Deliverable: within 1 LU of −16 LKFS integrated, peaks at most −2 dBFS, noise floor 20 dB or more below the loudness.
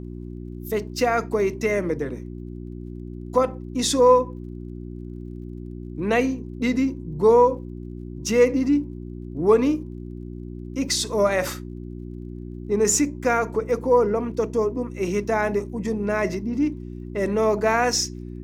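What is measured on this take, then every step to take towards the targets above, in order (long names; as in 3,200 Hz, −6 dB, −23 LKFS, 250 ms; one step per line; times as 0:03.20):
crackle rate 27 per second; mains hum 60 Hz; hum harmonics up to 360 Hz; level of the hum −32 dBFS; integrated loudness −22.5 LKFS; sample peak −6.0 dBFS; target loudness −16.0 LKFS
→ click removal
hum removal 60 Hz, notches 6
level +6.5 dB
brickwall limiter −2 dBFS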